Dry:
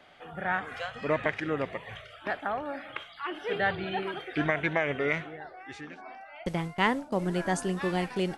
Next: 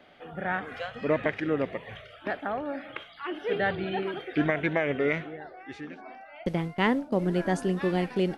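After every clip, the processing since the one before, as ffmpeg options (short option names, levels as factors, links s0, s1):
-af "equalizer=f=250:t=o:w=1:g=5,equalizer=f=500:t=o:w=1:g=3,equalizer=f=1000:t=o:w=1:g=-3,equalizer=f=8000:t=o:w=1:g=-8"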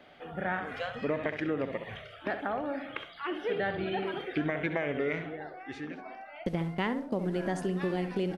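-filter_complex "[0:a]asplit=2[s0][s1];[s1]adelay=66,lowpass=f=2000:p=1,volume=0.355,asplit=2[s2][s3];[s3]adelay=66,lowpass=f=2000:p=1,volume=0.25,asplit=2[s4][s5];[s5]adelay=66,lowpass=f=2000:p=1,volume=0.25[s6];[s2][s4][s6]amix=inputs=3:normalize=0[s7];[s0][s7]amix=inputs=2:normalize=0,acompressor=threshold=0.0398:ratio=4"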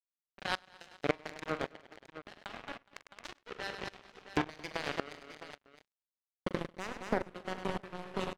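-filter_complex "[0:a]acrusher=bits=3:mix=0:aa=0.5,asplit=2[s0][s1];[s1]aecho=0:1:43|102|222|275|417|663:0.2|0.251|0.251|0.1|0.112|0.158[s2];[s0][s2]amix=inputs=2:normalize=0,aeval=exprs='val(0)*pow(10,-20*if(lt(mod(-1.8*n/s,1),2*abs(-1.8)/1000),1-mod(-1.8*n/s,1)/(2*abs(-1.8)/1000),(mod(-1.8*n/s,1)-2*abs(-1.8)/1000)/(1-2*abs(-1.8)/1000))/20)':c=same,volume=1.58"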